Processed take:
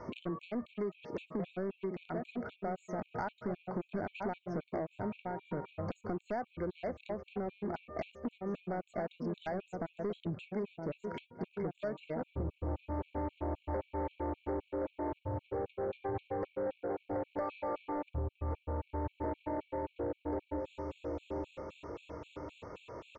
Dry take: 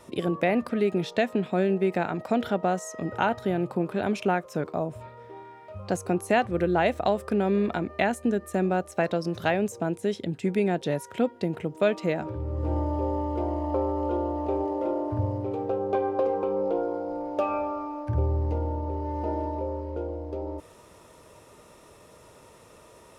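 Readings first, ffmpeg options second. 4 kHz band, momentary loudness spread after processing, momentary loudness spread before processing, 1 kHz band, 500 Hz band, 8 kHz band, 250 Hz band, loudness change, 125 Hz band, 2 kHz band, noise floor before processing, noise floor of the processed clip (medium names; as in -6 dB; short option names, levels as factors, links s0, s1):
-16.0 dB, 5 LU, 8 LU, -11.5 dB, -11.5 dB, under -25 dB, -11.5 dB, -12.0 dB, -11.0 dB, -15.0 dB, -52 dBFS, -73 dBFS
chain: -filter_complex "[0:a]highshelf=f=3900:t=q:w=1.5:g=-10,acrossover=split=2700[s0][s1];[s1]acompressor=threshold=0.00251:ratio=4:attack=1:release=60[s2];[s0][s2]amix=inputs=2:normalize=0,asplit=2[s3][s4];[s4]adelay=967,lowpass=f=1100:p=1,volume=0.398,asplit=2[s5][s6];[s6]adelay=967,lowpass=f=1100:p=1,volume=0.32,asplit=2[s7][s8];[s8]adelay=967,lowpass=f=1100:p=1,volume=0.32,asplit=2[s9][s10];[s10]adelay=967,lowpass=f=1100:p=1,volume=0.32[s11];[s5][s7][s9][s11]amix=inputs=4:normalize=0[s12];[s3][s12]amix=inputs=2:normalize=0,acompressor=threshold=0.0178:ratio=8,equalizer=f=1900:w=7:g=-10.5,aresample=16000,asoftclip=type=tanh:threshold=0.0188,aresample=44100,afftfilt=real='re*gt(sin(2*PI*3.8*pts/sr)*(1-2*mod(floor(b*sr/1024/2200),2)),0)':imag='im*gt(sin(2*PI*3.8*pts/sr)*(1-2*mod(floor(b*sr/1024/2200),2)),0)':win_size=1024:overlap=0.75,volume=1.88"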